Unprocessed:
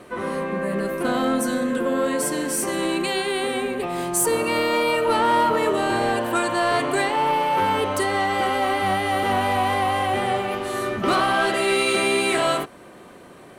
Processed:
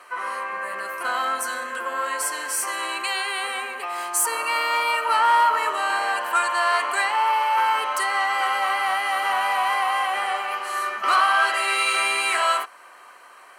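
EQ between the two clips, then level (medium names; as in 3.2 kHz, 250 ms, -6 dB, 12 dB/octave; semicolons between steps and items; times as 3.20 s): resonant high-pass 1.1 kHz, resonance Q 1.7; Butterworth band-stop 3.6 kHz, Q 7.7; 0.0 dB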